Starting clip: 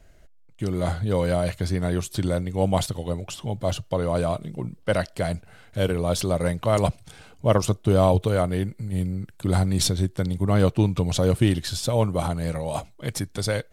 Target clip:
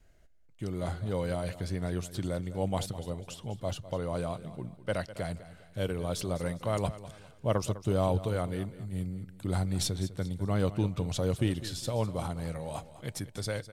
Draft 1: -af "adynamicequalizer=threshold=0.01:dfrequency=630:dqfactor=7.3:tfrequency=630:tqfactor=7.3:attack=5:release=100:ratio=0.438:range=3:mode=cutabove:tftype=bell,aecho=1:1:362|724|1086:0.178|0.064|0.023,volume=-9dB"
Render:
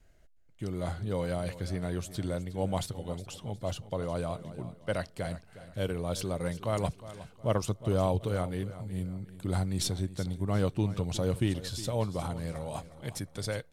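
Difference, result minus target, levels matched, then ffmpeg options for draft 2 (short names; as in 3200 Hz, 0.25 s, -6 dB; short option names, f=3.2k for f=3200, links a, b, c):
echo 0.159 s late
-af "adynamicequalizer=threshold=0.01:dfrequency=630:dqfactor=7.3:tfrequency=630:tqfactor=7.3:attack=5:release=100:ratio=0.438:range=3:mode=cutabove:tftype=bell,aecho=1:1:203|406|609:0.178|0.064|0.023,volume=-9dB"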